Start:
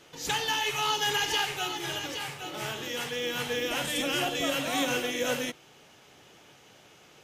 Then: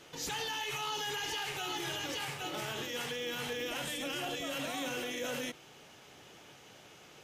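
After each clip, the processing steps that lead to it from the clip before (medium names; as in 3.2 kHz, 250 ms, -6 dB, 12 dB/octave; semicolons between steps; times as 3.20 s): peak limiter -28.5 dBFS, peak gain reduction 11.5 dB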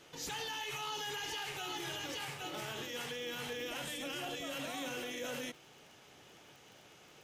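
crackle 20 per s -45 dBFS; trim -3.5 dB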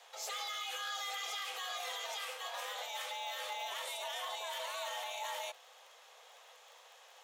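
frequency shift +370 Hz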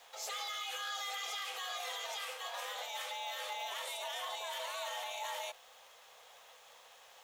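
bit crusher 11-bit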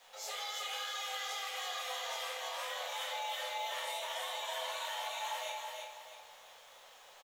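feedback delay 327 ms, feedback 37%, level -4 dB; simulated room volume 120 m³, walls mixed, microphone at 1.1 m; trim -4 dB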